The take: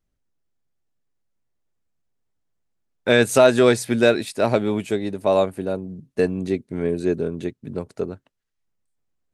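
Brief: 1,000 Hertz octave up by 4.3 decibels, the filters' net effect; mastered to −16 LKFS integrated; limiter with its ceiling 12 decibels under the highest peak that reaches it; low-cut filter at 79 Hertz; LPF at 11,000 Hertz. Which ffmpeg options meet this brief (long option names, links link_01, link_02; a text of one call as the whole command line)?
ffmpeg -i in.wav -af "highpass=79,lowpass=11000,equalizer=frequency=1000:width_type=o:gain=6,volume=9dB,alimiter=limit=-2.5dB:level=0:latency=1" out.wav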